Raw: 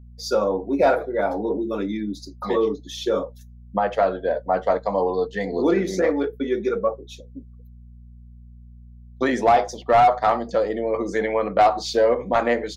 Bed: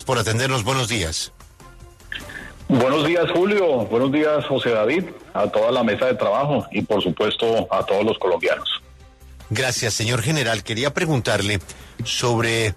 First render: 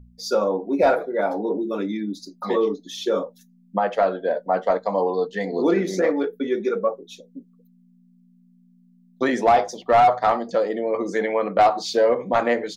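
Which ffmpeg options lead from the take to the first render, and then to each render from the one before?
-af "bandreject=f=60:t=h:w=4,bandreject=f=120:t=h:w=4"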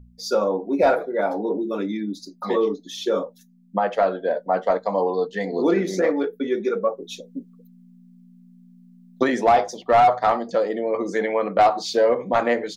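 -filter_complex "[0:a]asplit=3[a][b][c];[a]afade=t=out:st=6.98:d=0.02[d];[b]acontrast=55,afade=t=in:st=6.98:d=0.02,afade=t=out:st=9.22:d=0.02[e];[c]afade=t=in:st=9.22:d=0.02[f];[d][e][f]amix=inputs=3:normalize=0"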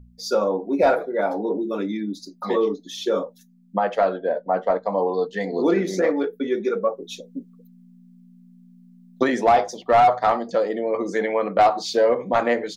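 -filter_complex "[0:a]asettb=1/sr,asplit=3[a][b][c];[a]atrim=end=4.184[d];[b]atrim=start=4.18:end=5.12,asetpts=PTS-STARTPTS,afade=t=in:d=0.004:c=qsin,afade=t=out:st=0.936:d=0.004:c=qsin,highshelf=f=3.4k:g=-11.5[e];[c]atrim=start=5.116[f];[d][e]acrossfade=d=0.004:c1=hsin:c2=qsin[g];[g][f]acrossfade=d=0.004:c1=qsin:c2=hsin"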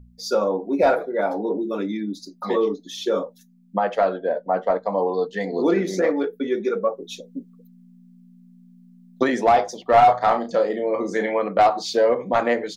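-filter_complex "[0:a]asettb=1/sr,asplit=3[a][b][c];[a]atrim=end=9.904[d];[b]atrim=start=9.9:end=11.39,asetpts=PTS-STARTPTS,afade=t=in:d=0.004:c=qsin,afade=t=out:st=1.486:d=0.004:c=qsin,asplit=2[e][f];[f]adelay=33,volume=-7.5dB[g];[e][g]amix=inputs=2:normalize=0,atrim=end_sample=65709[h];[c]atrim=start=11.386[i];[d][h]acrossfade=d=0.004:c1=hsin:c2=qsin[j];[j][i]acrossfade=d=0.004:c1=qsin:c2=hsin"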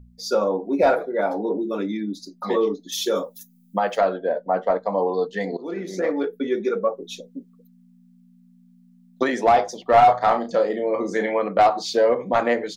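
-filter_complex "[0:a]asettb=1/sr,asplit=3[a][b][c];[a]atrim=end=2.924[d];[b]atrim=start=2.92:end=4.01,asetpts=PTS-STARTPTS,afade=t=in:d=0.004:c=qsin,afade=t=out:st=1.086:d=0.004:c=qsin,aemphasis=mode=production:type=75fm[e];[c]atrim=start=4.006[f];[d][e]acrossfade=d=0.004:c1=hsin:c2=qsin[g];[g][f]acrossfade=d=0.004:c1=qsin:c2=hsin,asettb=1/sr,asplit=3[h][i][j];[h]atrim=end=7.274[k];[i]atrim=start=7.27:end=9.44,asetpts=PTS-STARTPTS,afade=t=in:d=0.004:c=qsin,afade=t=out:st=2.166:d=0.004:c=qsin,lowshelf=f=210:g=-7.5[l];[j]atrim=start=9.436[m];[k][l]acrossfade=d=0.004:c1=hsin:c2=qsin[n];[n][m]acrossfade=d=0.004:c1=qsin:c2=hsin,asplit=2[o][p];[o]atrim=end=5.57,asetpts=PTS-STARTPTS,afade=t=out:st=5.566:d=0.004:c=hsin:silence=0.0944061[q];[p]atrim=start=5.57,asetpts=PTS-STARTPTS,afade=t=in:d=0.72:silence=0.0944061[r];[q][r]concat=n=2:v=0:a=1"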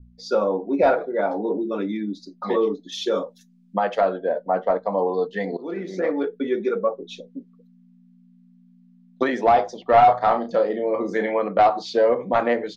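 -af "lowpass=3.9k,adynamicequalizer=threshold=0.0126:dfrequency=2100:dqfactor=1.4:tfrequency=2100:tqfactor=1.4:attack=5:release=100:ratio=0.375:range=2.5:mode=cutabove:tftype=bell"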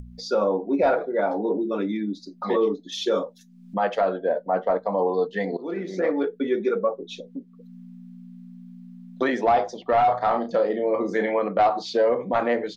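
-af "alimiter=limit=-13dB:level=0:latency=1:release=23,acompressor=mode=upward:threshold=-32dB:ratio=2.5"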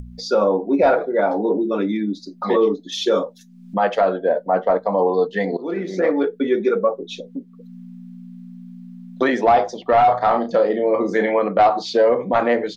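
-af "volume=5dB"

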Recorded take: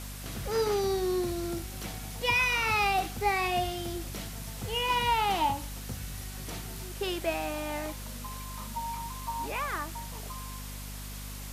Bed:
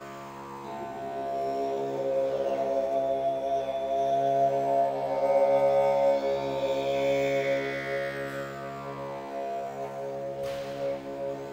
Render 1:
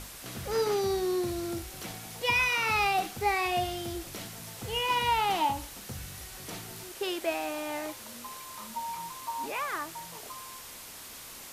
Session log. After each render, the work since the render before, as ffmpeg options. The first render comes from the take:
-af "bandreject=f=50:t=h:w=6,bandreject=f=100:t=h:w=6,bandreject=f=150:t=h:w=6,bandreject=f=200:t=h:w=6,bandreject=f=250:t=h:w=6"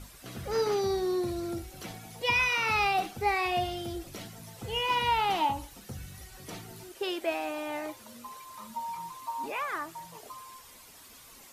-af "afftdn=nr=10:nf=-46"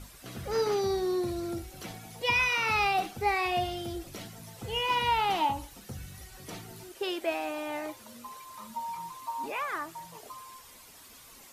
-af anull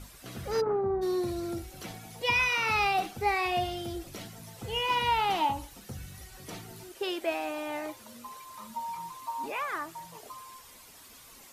-filter_complex "[0:a]asplit=3[a][b][c];[a]afade=t=out:st=0.6:d=0.02[d];[b]lowpass=f=1.4k:w=0.5412,lowpass=f=1.4k:w=1.3066,afade=t=in:st=0.6:d=0.02,afade=t=out:st=1.01:d=0.02[e];[c]afade=t=in:st=1.01:d=0.02[f];[d][e][f]amix=inputs=3:normalize=0"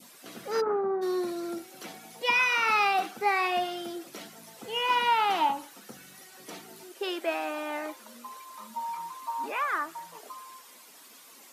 -af "highpass=f=210:w=0.5412,highpass=f=210:w=1.3066,adynamicequalizer=threshold=0.00562:dfrequency=1400:dqfactor=1.6:tfrequency=1400:tqfactor=1.6:attack=5:release=100:ratio=0.375:range=3.5:mode=boostabove:tftype=bell"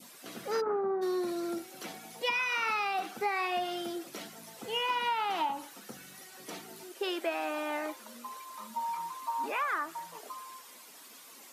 -af "acompressor=threshold=-28dB:ratio=6"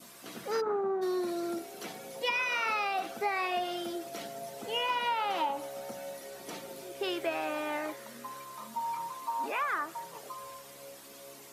-filter_complex "[1:a]volume=-19dB[a];[0:a][a]amix=inputs=2:normalize=0"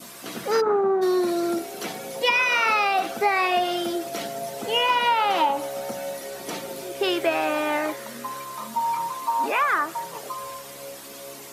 -af "volume=10dB"

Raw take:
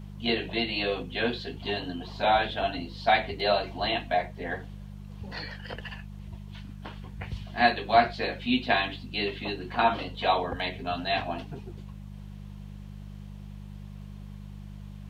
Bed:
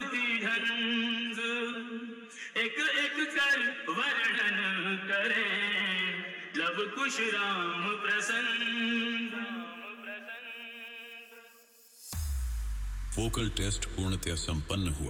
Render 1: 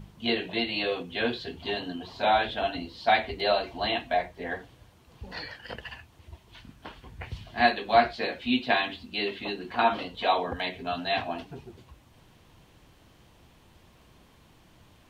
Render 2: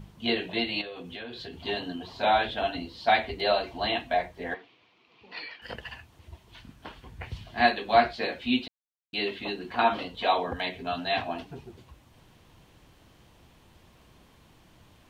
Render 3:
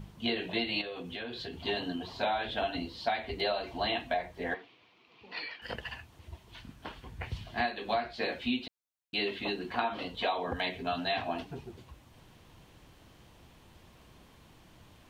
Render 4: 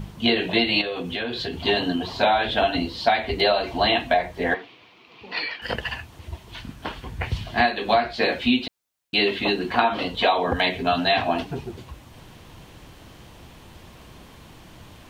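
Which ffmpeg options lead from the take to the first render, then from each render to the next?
-af "bandreject=f=50:t=h:w=4,bandreject=f=100:t=h:w=4,bandreject=f=150:t=h:w=4,bandreject=f=200:t=h:w=4"
-filter_complex "[0:a]asettb=1/sr,asplit=3[a][b][c];[a]atrim=end=0.814[d];[b]atrim=start=0.81:end=1.65,asetpts=PTS-STARTPTS,afade=t=in:d=0.004:c=qsin,afade=t=out:st=0.836:d=0.004:c=qsin,acompressor=threshold=-36dB:ratio=8:attack=3.2:release=140:knee=1:detection=peak[e];[c]atrim=start=1.646[f];[d][e]acrossfade=d=0.004:c1=hsin:c2=qsin[g];[g][f]acrossfade=d=0.004:c1=qsin:c2=hsin,asettb=1/sr,asplit=3[h][i][j];[h]atrim=end=4.544[k];[i]atrim=start=4.54:end=5.62,asetpts=PTS-STARTPTS,afade=t=in:d=0.004:c=qsin,afade=t=out:st=1.076:d=0.004:c=qsin,highpass=380,equalizer=f=560:t=q:w=4:g=-10,equalizer=f=830:t=q:w=4:g=-5,equalizer=f=1.6k:t=q:w=4:g=-9,equalizer=f=2.4k:t=q:w=4:g=8,lowpass=f=4.4k:w=0.5412,lowpass=f=4.4k:w=1.3066[l];[j]atrim=start=5.616[m];[k][l]acrossfade=d=0.004:c1=hsin:c2=qsin[n];[n][m]acrossfade=d=0.004:c1=qsin:c2=hsin,asplit=3[o][p][q];[o]atrim=end=8.68,asetpts=PTS-STARTPTS,afade=t=out:st=8.676:d=0.004:c=hsin[r];[p]atrim=start=8.68:end=9.13,asetpts=PTS-STARTPTS,volume=0[s];[q]atrim=start=9.13,asetpts=PTS-STARTPTS,afade=t=in:d=0.004:c=hsin[t];[r][s][t]concat=n=3:v=0:a=1"
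-af "acompressor=threshold=-27dB:ratio=16"
-af "volume=11.5dB"

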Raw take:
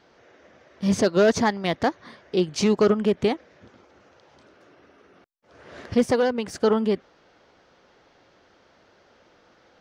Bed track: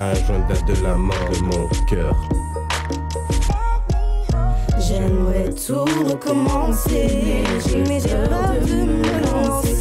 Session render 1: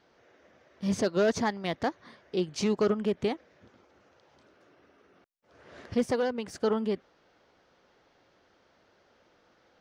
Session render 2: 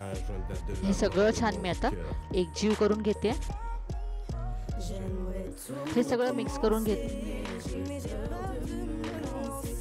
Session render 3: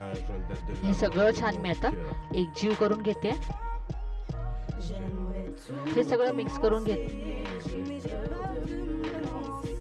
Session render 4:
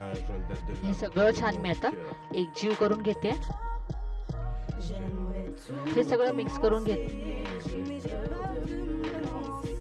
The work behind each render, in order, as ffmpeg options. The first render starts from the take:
-af "volume=-7dB"
-filter_complex "[1:a]volume=-17dB[a];[0:a][a]amix=inputs=2:normalize=0"
-af "lowpass=4.4k,aecho=1:1:6.4:0.64"
-filter_complex "[0:a]asettb=1/sr,asplit=3[a][b][c];[a]atrim=end=1.804[d];[b]atrim=start=1.8:end=2.83,asetpts=PTS-STARTPTS,afade=t=in:d=0.004:c=qsin,afade=t=out:st=1.026:d=0.004:c=qsin,highpass=210[e];[c]atrim=start=2.826[f];[d][e]acrossfade=d=0.004:c1=hsin:c2=qsin[g];[g][f]acrossfade=d=0.004:c1=qsin:c2=hsin,asettb=1/sr,asplit=3[h][i][j];[h]atrim=end=3.424[k];[i]atrim=start=3.42:end=4.42,asetpts=PTS-STARTPTS,afade=t=in:d=0.004:c=qsin,afade=t=out:st=0.996:d=0.004:c=qsin,asuperstop=centerf=2500:order=20:qfactor=2.4[l];[j]atrim=start=4.416[m];[k][l]acrossfade=d=0.004:c1=hsin:c2=qsin[n];[n][m]acrossfade=d=0.004:c1=qsin:c2=hsin,asplit=2[o][p];[o]atrim=end=1.16,asetpts=PTS-STARTPTS,afade=t=out:st=0.67:d=0.49:silence=0.281838[q];[p]atrim=start=1.16,asetpts=PTS-STARTPTS,afade=t=in:d=0.004:c=hsin:silence=0.281838[r];[q][r]concat=n=2:v=0:a=1"

